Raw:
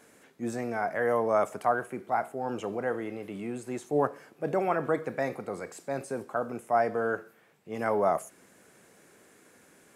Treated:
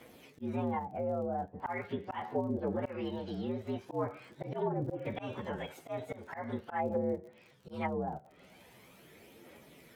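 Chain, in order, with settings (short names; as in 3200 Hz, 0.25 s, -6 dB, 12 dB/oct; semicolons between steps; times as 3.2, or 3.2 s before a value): inharmonic rescaling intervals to 117%; auto swell 0.196 s; in parallel at -2 dB: compressor, threshold -43 dBFS, peak gain reduction 18.5 dB; on the sum: phaser 0.42 Hz, delay 1.6 ms, feedback 36%; treble ducked by the level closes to 350 Hz, closed at -25.5 dBFS; crackle 48/s -51 dBFS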